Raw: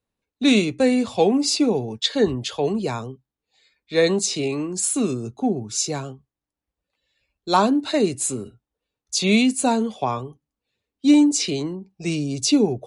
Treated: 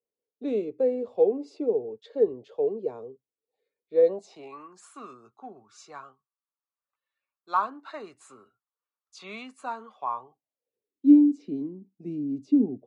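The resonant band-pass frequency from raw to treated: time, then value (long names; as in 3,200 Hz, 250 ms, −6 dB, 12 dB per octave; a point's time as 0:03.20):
resonant band-pass, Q 4.8
0:03.99 460 Hz
0:04.59 1,200 Hz
0:09.98 1,200 Hz
0:11.20 260 Hz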